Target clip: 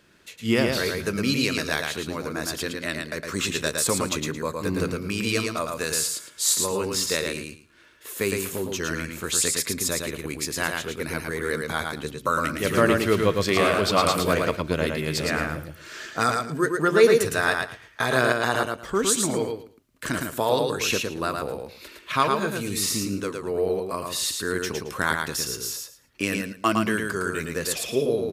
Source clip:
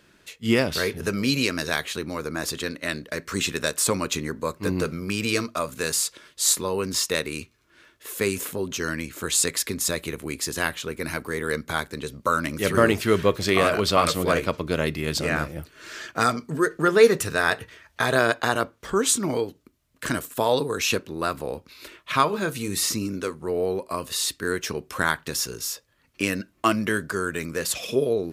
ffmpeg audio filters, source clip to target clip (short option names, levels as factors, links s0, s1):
-af "aecho=1:1:111|222|333:0.631|0.12|0.0228,volume=0.841"